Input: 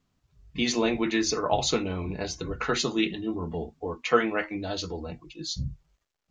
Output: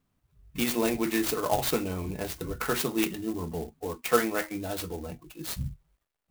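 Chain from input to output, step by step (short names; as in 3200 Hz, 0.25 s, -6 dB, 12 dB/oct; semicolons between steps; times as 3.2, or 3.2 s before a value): clock jitter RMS 0.051 ms; gain -1.5 dB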